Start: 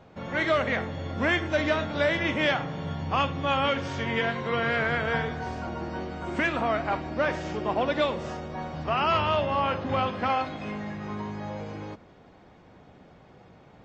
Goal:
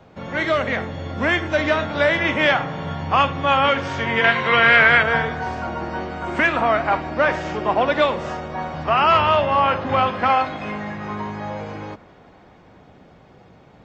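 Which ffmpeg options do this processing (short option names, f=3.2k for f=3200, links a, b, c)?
-filter_complex "[0:a]asettb=1/sr,asplit=3[a][b][c];[a]atrim=end=4.244[d];[b]atrim=start=4.24:end=5.03,asetpts=PTS-STARTPTS,afade=t=in:d=0.004:c=qsin,afade=t=out:st=0.786:d=0.004:c=qsin,equalizer=f=2.6k:w=0.71:g=9[e];[c]atrim=start=5.026[f];[d][e]acrossfade=d=0.004:c1=hsin:c2=qsin[g];[g][f]acrossfade=d=0.004:c1=qsin:c2=hsin,acrossover=split=230|610|2600[h][i][j][k];[j]dynaudnorm=f=110:g=31:m=6dB[l];[h][i][l][k]amix=inputs=4:normalize=0,volume=4dB"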